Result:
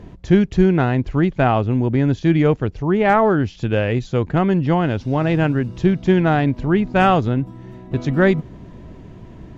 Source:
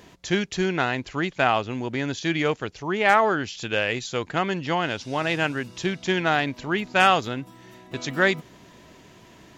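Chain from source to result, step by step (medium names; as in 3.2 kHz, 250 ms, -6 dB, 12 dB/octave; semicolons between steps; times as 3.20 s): tilt EQ -4.5 dB/octave; trim +2 dB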